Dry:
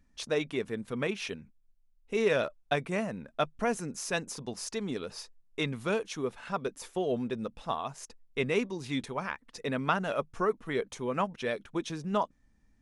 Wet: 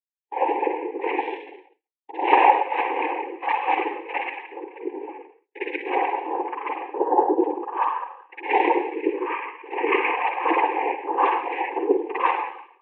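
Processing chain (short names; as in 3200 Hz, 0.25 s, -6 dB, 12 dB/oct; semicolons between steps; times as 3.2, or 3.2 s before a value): local time reversal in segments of 77 ms; spectral noise reduction 10 dB; AGC gain up to 3.5 dB; wrapped overs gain 16.5 dB; spring tank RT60 1.2 s, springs 47/53 ms, chirp 30 ms, DRR -9.5 dB; mistuned SSB +160 Hz 250–2600 Hz; noise vocoder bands 8; fixed phaser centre 940 Hz, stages 8; expander -40 dBFS; spectral expander 1.5:1; gain +4 dB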